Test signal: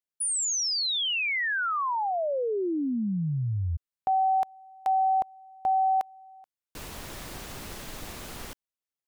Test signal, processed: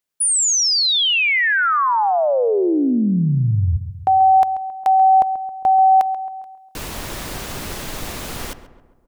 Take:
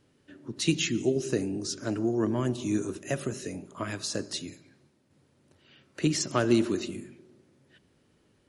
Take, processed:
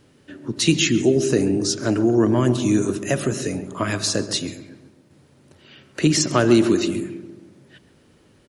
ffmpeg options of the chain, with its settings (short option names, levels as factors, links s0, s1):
-filter_complex "[0:a]asplit=2[s0][s1];[s1]alimiter=limit=0.0794:level=0:latency=1,volume=0.944[s2];[s0][s2]amix=inputs=2:normalize=0,asplit=2[s3][s4];[s4]adelay=135,lowpass=f=1600:p=1,volume=0.251,asplit=2[s5][s6];[s6]adelay=135,lowpass=f=1600:p=1,volume=0.53,asplit=2[s7][s8];[s8]adelay=135,lowpass=f=1600:p=1,volume=0.53,asplit=2[s9][s10];[s10]adelay=135,lowpass=f=1600:p=1,volume=0.53,asplit=2[s11][s12];[s12]adelay=135,lowpass=f=1600:p=1,volume=0.53,asplit=2[s13][s14];[s14]adelay=135,lowpass=f=1600:p=1,volume=0.53[s15];[s3][s5][s7][s9][s11][s13][s15]amix=inputs=7:normalize=0,volume=1.78"